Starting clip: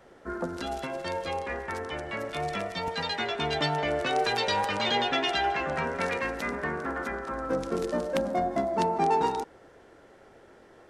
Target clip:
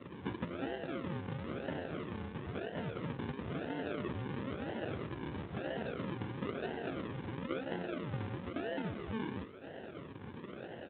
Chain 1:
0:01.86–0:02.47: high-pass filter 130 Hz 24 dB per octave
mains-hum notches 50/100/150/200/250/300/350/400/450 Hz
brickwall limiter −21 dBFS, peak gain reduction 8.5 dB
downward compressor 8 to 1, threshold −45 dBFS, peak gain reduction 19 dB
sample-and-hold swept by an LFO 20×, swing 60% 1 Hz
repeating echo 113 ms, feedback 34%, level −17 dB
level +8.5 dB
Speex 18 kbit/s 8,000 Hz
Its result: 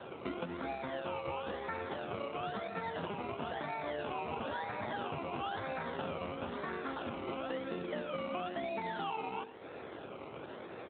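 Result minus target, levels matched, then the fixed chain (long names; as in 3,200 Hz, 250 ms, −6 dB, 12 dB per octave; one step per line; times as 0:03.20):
sample-and-hold swept by an LFO: distortion −21 dB
0:01.86–0:02.47: high-pass filter 130 Hz 24 dB per octave
mains-hum notches 50/100/150/200/250/300/350/400/450 Hz
brickwall limiter −21 dBFS, peak gain reduction 8.5 dB
downward compressor 8 to 1, threshold −45 dBFS, peak gain reduction 19 dB
sample-and-hold swept by an LFO 53×, swing 60% 1 Hz
repeating echo 113 ms, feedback 34%, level −17 dB
level +8.5 dB
Speex 18 kbit/s 8,000 Hz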